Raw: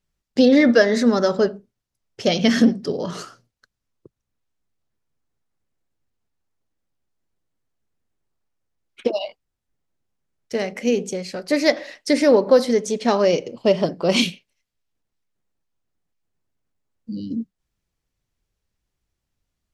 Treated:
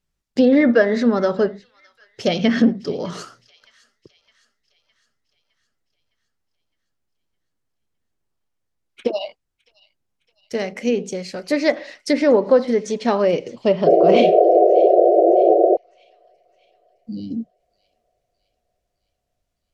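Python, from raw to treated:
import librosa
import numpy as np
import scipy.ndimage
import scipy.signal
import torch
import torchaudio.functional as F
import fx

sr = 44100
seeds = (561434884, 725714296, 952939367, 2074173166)

y = fx.spec_paint(x, sr, seeds[0], shape='noise', start_s=13.86, length_s=1.91, low_hz=330.0, high_hz=750.0, level_db=-13.0)
y = fx.env_lowpass_down(y, sr, base_hz=2300.0, full_db=-12.0)
y = fx.echo_wet_highpass(y, sr, ms=611, feedback_pct=53, hz=2100.0, wet_db=-20)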